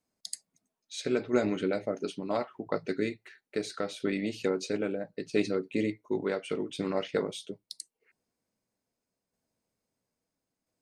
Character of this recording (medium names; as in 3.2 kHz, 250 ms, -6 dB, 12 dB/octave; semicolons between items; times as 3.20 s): tremolo saw down 0.75 Hz, depth 35%